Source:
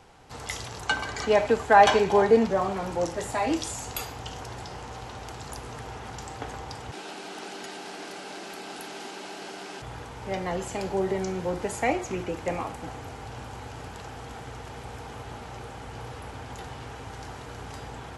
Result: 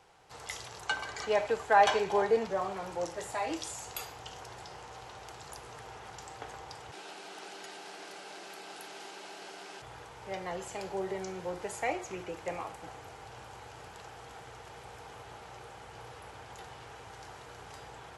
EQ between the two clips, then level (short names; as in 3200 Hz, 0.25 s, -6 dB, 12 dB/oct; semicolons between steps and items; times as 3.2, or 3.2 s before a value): low shelf 160 Hz -10 dB; bell 250 Hz -10.5 dB 0.39 oct; -6.0 dB